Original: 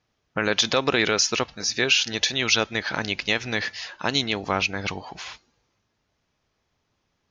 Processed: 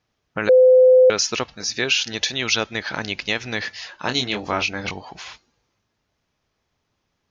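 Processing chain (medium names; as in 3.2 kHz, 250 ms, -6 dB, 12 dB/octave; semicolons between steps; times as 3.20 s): 0.49–1.10 s: bleep 511 Hz -8 dBFS; 4.00–4.91 s: doubling 24 ms -5 dB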